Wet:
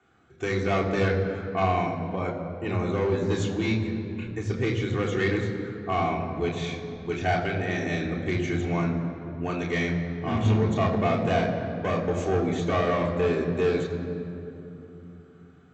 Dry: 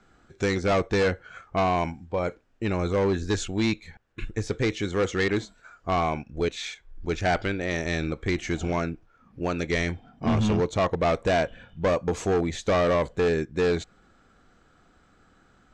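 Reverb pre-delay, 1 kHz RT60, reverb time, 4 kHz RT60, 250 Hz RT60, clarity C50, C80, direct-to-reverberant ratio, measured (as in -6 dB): 3 ms, 2.7 s, 3.0 s, 1.8 s, 4.6 s, 6.0 dB, 7.0 dB, -2.5 dB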